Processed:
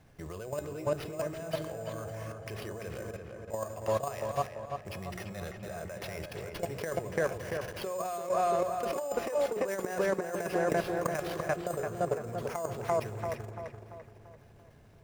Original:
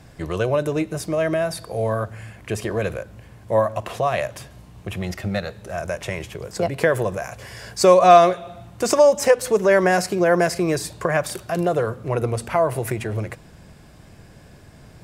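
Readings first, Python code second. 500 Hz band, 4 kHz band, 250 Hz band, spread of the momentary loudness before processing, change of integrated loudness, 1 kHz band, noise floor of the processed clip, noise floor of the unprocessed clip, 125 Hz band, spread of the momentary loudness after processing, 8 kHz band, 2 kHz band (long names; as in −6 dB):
−13.0 dB, −14.0 dB, −13.5 dB, 16 LU, −14.0 dB, −13.5 dB, −56 dBFS, −47 dBFS, −12.5 dB, 11 LU, −14.0 dB, −13.0 dB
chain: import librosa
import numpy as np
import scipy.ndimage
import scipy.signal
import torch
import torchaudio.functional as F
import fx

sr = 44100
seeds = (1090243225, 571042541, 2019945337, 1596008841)

p1 = fx.high_shelf(x, sr, hz=7700.0, db=-10.5)
p2 = fx.hum_notches(p1, sr, base_hz=60, count=6)
p3 = fx.echo_feedback(p2, sr, ms=283, feedback_pct=59, wet_db=-17.0)
p4 = fx.level_steps(p3, sr, step_db=19)
p5 = fx.sample_hold(p4, sr, seeds[0], rate_hz=7700.0, jitter_pct=0)
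p6 = fx.comb_fb(p5, sr, f0_hz=420.0, decay_s=0.46, harmonics='all', damping=0.0, mix_pct=60)
p7 = p6 + fx.echo_filtered(p6, sr, ms=340, feedback_pct=48, hz=2800.0, wet_db=-4.5, dry=0)
p8 = fx.over_compress(p7, sr, threshold_db=-31.0, ratio=-0.5)
y = p8 * librosa.db_to_amplitude(2.0)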